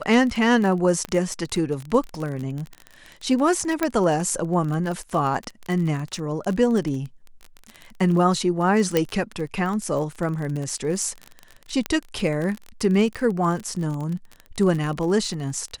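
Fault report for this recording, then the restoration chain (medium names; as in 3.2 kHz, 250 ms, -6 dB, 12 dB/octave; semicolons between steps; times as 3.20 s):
crackle 29 per s -27 dBFS
1.05 s: pop -15 dBFS
3.83 s: pop -8 dBFS
8.97 s: pop -6 dBFS
11.86 s: pop -10 dBFS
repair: de-click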